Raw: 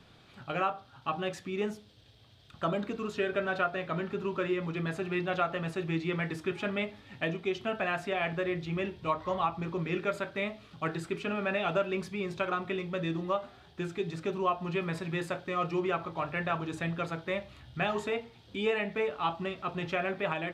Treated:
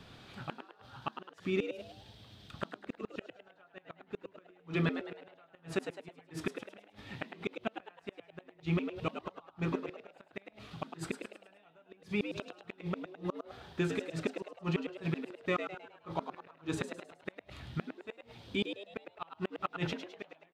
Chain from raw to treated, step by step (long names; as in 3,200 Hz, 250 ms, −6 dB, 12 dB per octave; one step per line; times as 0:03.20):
gate with flip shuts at −24 dBFS, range −37 dB
echo with shifted repeats 105 ms, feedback 42%, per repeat +99 Hz, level −8 dB
level +3.5 dB